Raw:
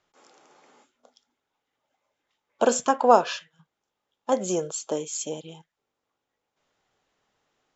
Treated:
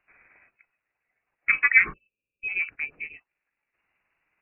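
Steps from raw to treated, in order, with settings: spectral delete 3.39–4.37, 470–2200 Hz; granular stretch 0.57×, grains 0.107 s; inverted band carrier 2800 Hz; gain +1 dB

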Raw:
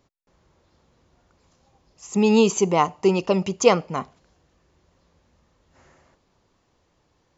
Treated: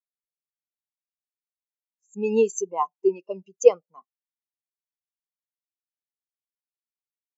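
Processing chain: HPF 380 Hz 6 dB/oct; high shelf 2800 Hz +11.5 dB; spectral expander 2.5:1; gain -1 dB

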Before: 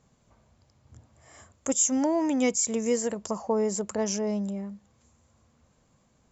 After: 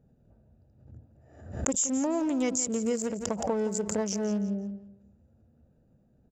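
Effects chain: Wiener smoothing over 41 samples; compressor 2.5:1, threshold -30 dBFS, peak gain reduction 7 dB; feedback echo 0.17 s, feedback 28%, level -13 dB; backwards sustainer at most 81 dB/s; gain +2.5 dB

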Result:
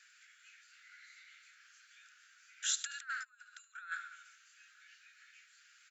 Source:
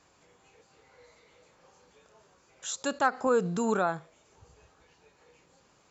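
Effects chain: high shelf 2100 Hz -11 dB; on a send: feedback echo 74 ms, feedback 60%, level -16.5 dB; on the sum: negative-ratio compressor -35 dBFS, ratio -0.5; steep high-pass 1400 Hz 96 dB/oct; gain +4.5 dB

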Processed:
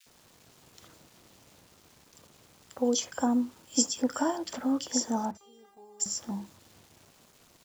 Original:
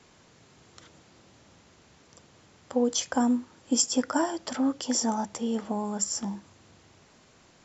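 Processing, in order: bit-crush 9-bit; 5.31–6 resonator 400 Hz, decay 0.29 s, harmonics all, mix 100%; bands offset in time highs, lows 60 ms, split 1800 Hz; gate with hold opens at -48 dBFS; gain -2 dB

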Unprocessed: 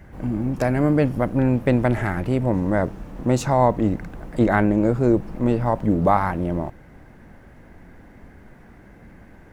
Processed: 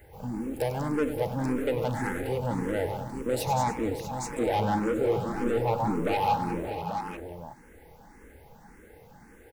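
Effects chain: 4.3–6.36 reverse delay 0.113 s, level -4 dB; pre-emphasis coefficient 0.8; small resonant body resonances 470/830 Hz, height 13 dB, ringing for 45 ms; soft clip -27 dBFS, distortion -9 dB; tapped delay 97/194/296/580/644/837 ms -11/-10/-19/-12.5/-14/-8 dB; endless phaser +1.8 Hz; gain +6.5 dB

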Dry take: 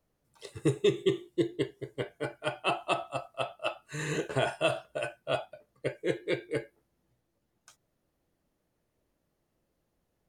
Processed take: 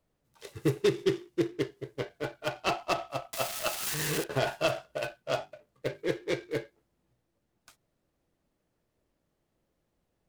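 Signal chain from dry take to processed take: 3.33–4.24 switching spikes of -22.5 dBFS; 5.17–6.05 notches 50/100/150/200/250/300/350/400 Hz; noise-modulated delay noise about 1600 Hz, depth 0.038 ms

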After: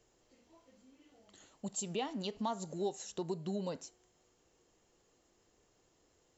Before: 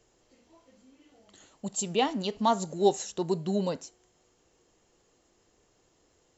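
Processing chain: compressor 3:1, threshold -31 dBFS, peak gain reduction 11 dB; gain -4.5 dB

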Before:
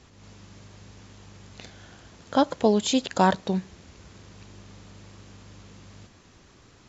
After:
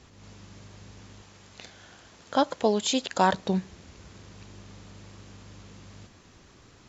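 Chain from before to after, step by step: 1.22–3.33 low shelf 300 Hz -8.5 dB

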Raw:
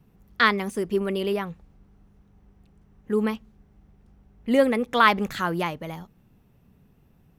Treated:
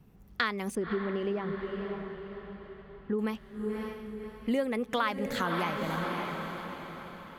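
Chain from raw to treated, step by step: diffused feedback echo 0.557 s, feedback 45%, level -9 dB; compressor 5:1, threshold -27 dBFS, peak gain reduction 14 dB; 0.75–3.19 tape spacing loss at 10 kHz 29 dB

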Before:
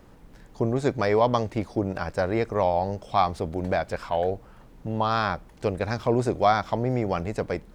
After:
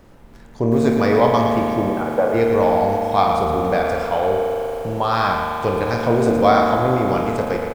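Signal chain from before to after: 1.89–2.34 speaker cabinet 240–2200 Hz, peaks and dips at 310 Hz -9 dB, 490 Hz +9 dB, 1800 Hz -9 dB; on a send: early reflections 26 ms -10.5 dB, 52 ms -10 dB; on the sum: spring tank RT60 3.7 s, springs 39 ms, chirp 60 ms, DRR 1 dB; lo-fi delay 0.113 s, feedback 35%, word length 7-bit, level -8 dB; gain +3.5 dB

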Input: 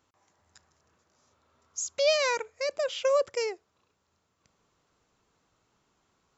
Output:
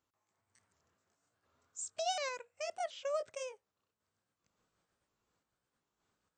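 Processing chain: repeated pitch sweeps +3.5 st, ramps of 0.726 s; random-step tremolo; gain -7.5 dB

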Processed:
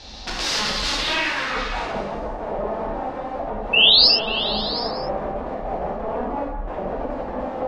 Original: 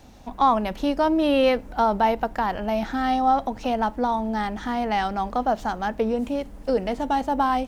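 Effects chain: ten-band EQ 125 Hz -4 dB, 250 Hz -7 dB, 4000 Hz +8 dB; in parallel at +2.5 dB: compressor 6:1, threshold -28 dBFS, peak gain reduction 13 dB; on the sum: wrapped overs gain 21.5 dB; low-pass sweep 4800 Hz -> 680 Hz, 0.88–1.92; painted sound rise, 3.73–4.08, 2600–5400 Hz -15 dBFS; on a send: delay with a stepping band-pass 0.18 s, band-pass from 1100 Hz, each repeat 0.7 oct, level -5 dB; on the sum: non-linear reverb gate 0.13 s flat, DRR -3 dB; gain -2.5 dB

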